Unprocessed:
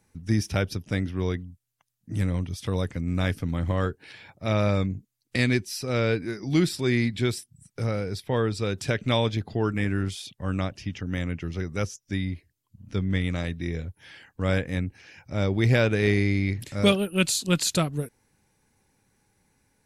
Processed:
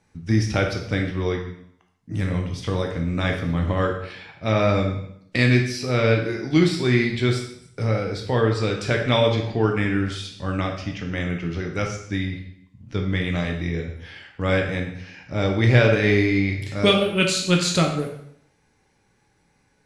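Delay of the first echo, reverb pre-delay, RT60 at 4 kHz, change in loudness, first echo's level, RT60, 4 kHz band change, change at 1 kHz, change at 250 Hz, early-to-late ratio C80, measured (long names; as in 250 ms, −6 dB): no echo audible, 6 ms, 0.65 s, +4.5 dB, no echo audible, 0.70 s, +5.0 dB, +6.0 dB, +3.5 dB, 9.0 dB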